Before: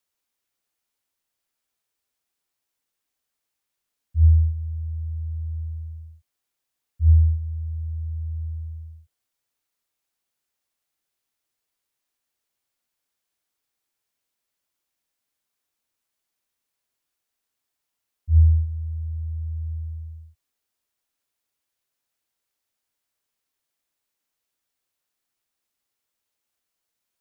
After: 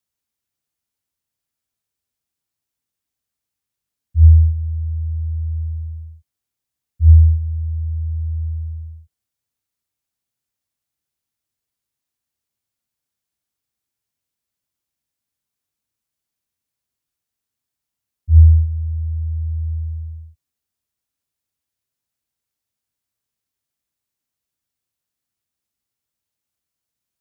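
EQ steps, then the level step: high-pass 49 Hz; tone controls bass +12 dB, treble +3 dB; -4.5 dB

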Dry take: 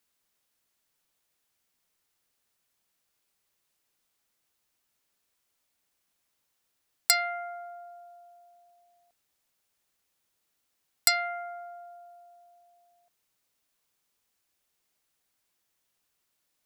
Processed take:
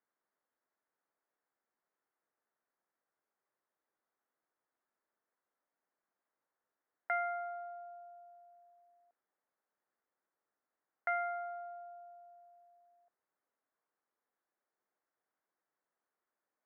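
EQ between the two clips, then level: high-pass 320 Hz 12 dB/octave; steep low-pass 1.9 kHz 36 dB/octave; distance through air 390 m; -1.5 dB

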